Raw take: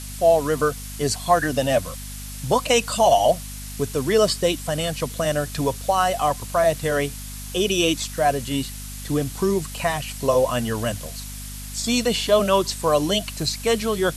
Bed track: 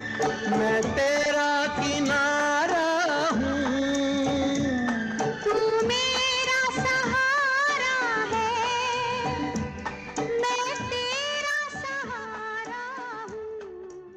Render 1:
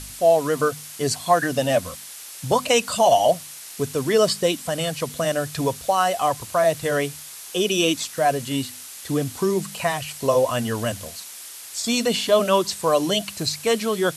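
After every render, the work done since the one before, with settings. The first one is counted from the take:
hum removal 50 Hz, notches 5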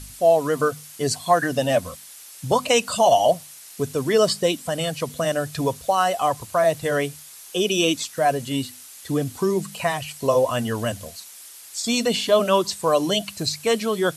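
broadband denoise 6 dB, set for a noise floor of −39 dBFS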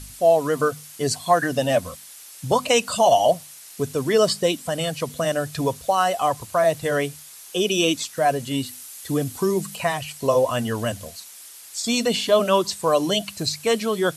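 0:08.66–0:09.76: high-shelf EQ 8,700 Hz +6.5 dB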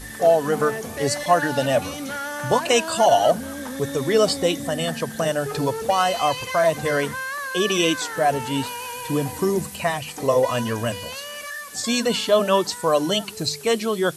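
mix in bed track −6.5 dB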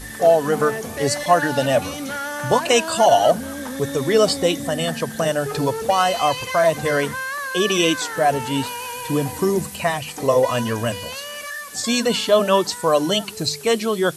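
level +2 dB

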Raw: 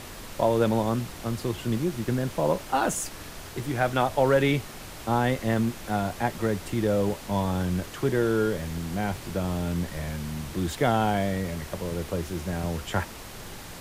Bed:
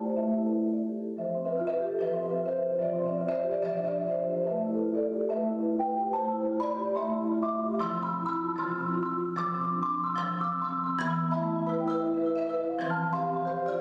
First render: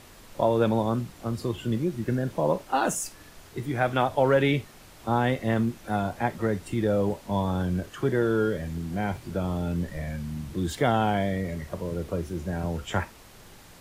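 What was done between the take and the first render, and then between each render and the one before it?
noise reduction from a noise print 9 dB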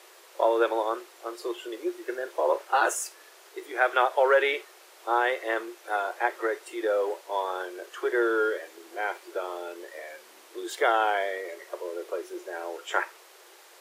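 Chebyshev high-pass filter 350 Hz, order 6
dynamic equaliser 1,500 Hz, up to +6 dB, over −42 dBFS, Q 1.2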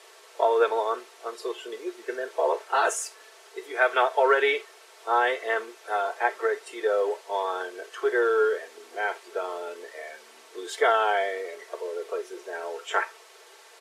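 low-pass filter 10,000 Hz 12 dB per octave
comb filter 4.5 ms, depth 71%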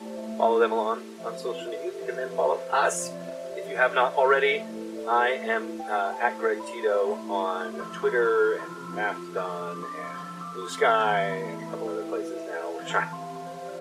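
mix in bed −7.5 dB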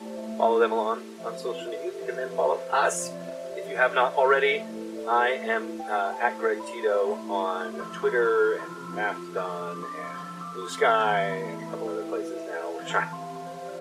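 no processing that can be heard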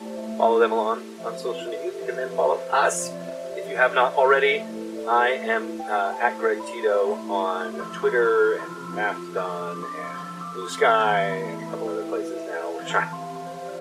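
level +3 dB

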